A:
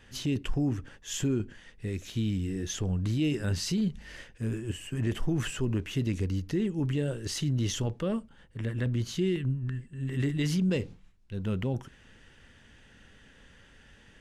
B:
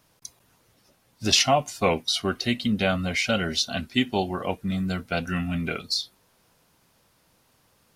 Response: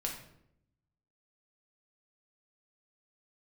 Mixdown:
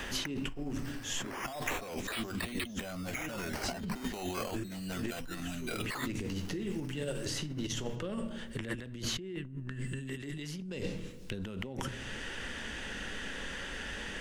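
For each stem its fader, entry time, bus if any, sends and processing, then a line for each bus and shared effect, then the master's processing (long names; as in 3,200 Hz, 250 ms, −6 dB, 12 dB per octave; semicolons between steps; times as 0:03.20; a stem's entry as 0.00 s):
+2.5 dB, 0.00 s, send −13 dB, automatic ducking −16 dB, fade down 0.50 s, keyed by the second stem
+0.5 dB, 0.00 s, no send, sample-and-hold swept by an LFO 10×, swing 60% 0.31 Hz; soft clipping −20 dBFS, distortion −11 dB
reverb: on, RT60 0.75 s, pre-delay 5 ms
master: compressor whose output falls as the input rises −36 dBFS, ratio −1; parametric band 120 Hz −10 dB 1.2 octaves; multiband upward and downward compressor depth 70%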